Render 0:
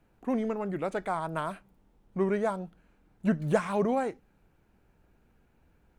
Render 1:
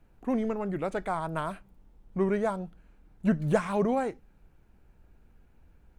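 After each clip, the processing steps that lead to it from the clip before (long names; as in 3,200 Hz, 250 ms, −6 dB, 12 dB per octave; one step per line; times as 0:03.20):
low-shelf EQ 74 Hz +12 dB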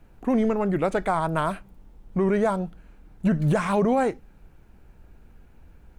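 brickwall limiter −21 dBFS, peak gain reduction 9.5 dB
level +8 dB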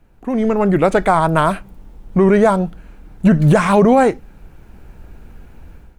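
automatic gain control gain up to 12 dB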